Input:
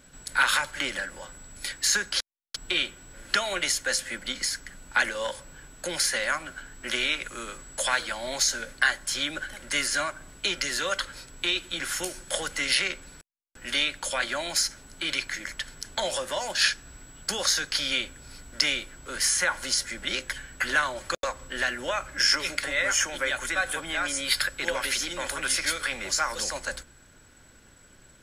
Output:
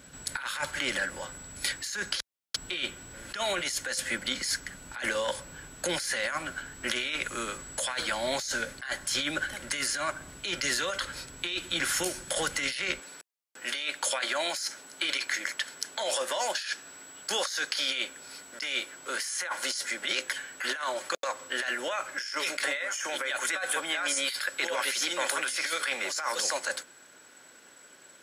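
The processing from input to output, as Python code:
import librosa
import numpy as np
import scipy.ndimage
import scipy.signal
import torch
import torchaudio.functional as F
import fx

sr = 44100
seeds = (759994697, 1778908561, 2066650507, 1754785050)

y = fx.highpass(x, sr, hz=fx.steps((0.0, 52.0), (13.0, 370.0)), slope=12)
y = fx.over_compress(y, sr, threshold_db=-31.0, ratio=-1.0)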